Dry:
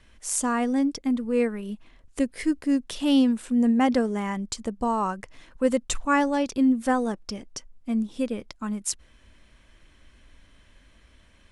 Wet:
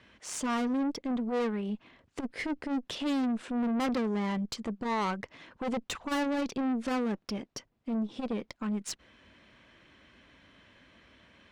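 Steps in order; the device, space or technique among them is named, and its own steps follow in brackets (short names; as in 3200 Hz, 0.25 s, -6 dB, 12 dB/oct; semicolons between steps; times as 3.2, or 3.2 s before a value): valve radio (BPF 130–4000 Hz; tube stage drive 30 dB, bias 0.35; core saturation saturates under 150 Hz); gain +3.5 dB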